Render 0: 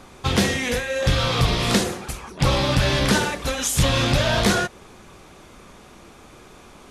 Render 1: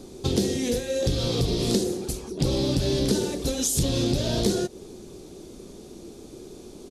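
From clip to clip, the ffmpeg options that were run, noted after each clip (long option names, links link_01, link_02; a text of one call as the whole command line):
ffmpeg -i in.wav -af "firequalizer=gain_entry='entry(100,0);entry(380,10);entry(550,-1);entry(1100,-14);entry(2100,-13);entry(4200,2)':delay=0.05:min_phase=1,acompressor=threshold=-23dB:ratio=2.5" out.wav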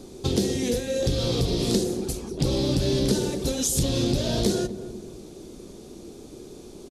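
ffmpeg -i in.wav -filter_complex "[0:a]asplit=2[link_01][link_02];[link_02]adelay=244,lowpass=frequency=800:poles=1,volume=-11.5dB,asplit=2[link_03][link_04];[link_04]adelay=244,lowpass=frequency=800:poles=1,volume=0.47,asplit=2[link_05][link_06];[link_06]adelay=244,lowpass=frequency=800:poles=1,volume=0.47,asplit=2[link_07][link_08];[link_08]adelay=244,lowpass=frequency=800:poles=1,volume=0.47,asplit=2[link_09][link_10];[link_10]adelay=244,lowpass=frequency=800:poles=1,volume=0.47[link_11];[link_01][link_03][link_05][link_07][link_09][link_11]amix=inputs=6:normalize=0" out.wav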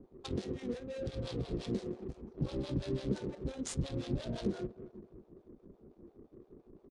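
ffmpeg -i in.wav -filter_complex "[0:a]acrossover=split=580[link_01][link_02];[link_01]aeval=exprs='val(0)*(1-1/2+1/2*cos(2*PI*5.8*n/s))':channel_layout=same[link_03];[link_02]aeval=exprs='val(0)*(1-1/2-1/2*cos(2*PI*5.8*n/s))':channel_layout=same[link_04];[link_03][link_04]amix=inputs=2:normalize=0,adynamicsmooth=sensitivity=7.5:basefreq=610,aresample=22050,aresample=44100,volume=-8.5dB" out.wav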